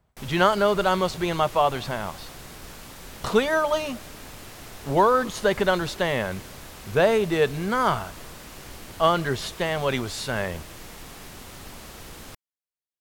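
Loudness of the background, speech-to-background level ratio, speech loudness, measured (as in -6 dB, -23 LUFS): -41.5 LUFS, 17.5 dB, -24.0 LUFS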